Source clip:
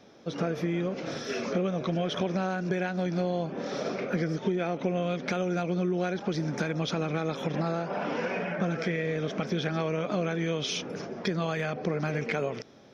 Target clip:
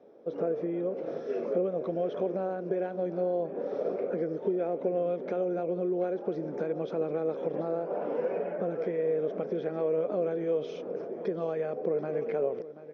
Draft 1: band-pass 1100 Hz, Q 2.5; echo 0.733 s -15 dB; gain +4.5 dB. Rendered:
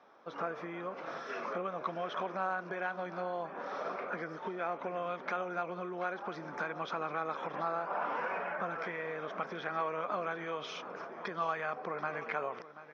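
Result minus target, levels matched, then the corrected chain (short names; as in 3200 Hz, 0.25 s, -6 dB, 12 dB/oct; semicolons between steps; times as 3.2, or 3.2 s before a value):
1000 Hz band +11.5 dB
band-pass 470 Hz, Q 2.5; echo 0.733 s -15 dB; gain +4.5 dB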